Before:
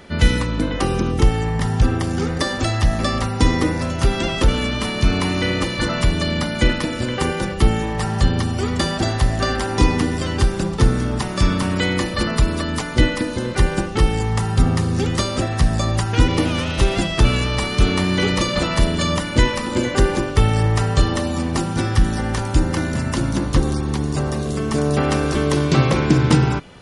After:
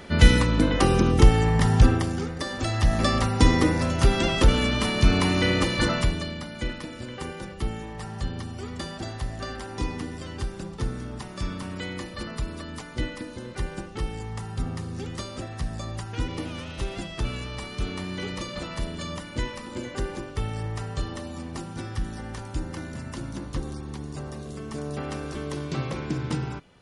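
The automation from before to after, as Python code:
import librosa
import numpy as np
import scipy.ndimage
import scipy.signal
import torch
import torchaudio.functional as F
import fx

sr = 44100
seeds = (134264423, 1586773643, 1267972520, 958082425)

y = fx.gain(x, sr, db=fx.line((1.85, 0.0), (2.35, -11.0), (3.02, -2.0), (5.89, -2.0), (6.38, -14.0)))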